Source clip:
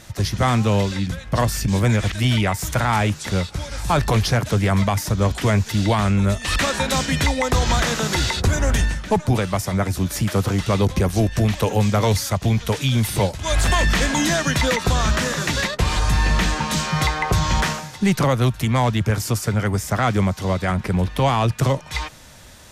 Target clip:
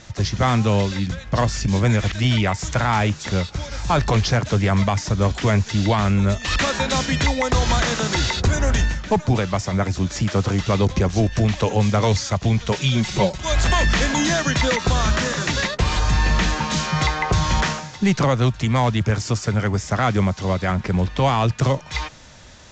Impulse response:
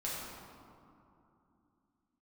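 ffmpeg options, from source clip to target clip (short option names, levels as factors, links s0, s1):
-filter_complex "[0:a]asettb=1/sr,asplit=3[s0][s1][s2];[s0]atrim=end=12.714[s3];[s1]atrim=start=12.71:end=13.45,asetpts=PTS-STARTPTS,afade=t=in:d=0.004:c=qsin,afade=t=out:st=0.736:d=0.004:c=qsin,aecho=1:1:5.4:0.65,atrim=end_sample=32634[s4];[s2]atrim=start=13.446[s5];[s3][s4]acrossfade=d=0.004:c1=hsin:c2=qsin[s6];[s6][s5]acrossfade=d=0.004:c1=qsin:c2=hsin" -ar 16000 -c:a pcm_alaw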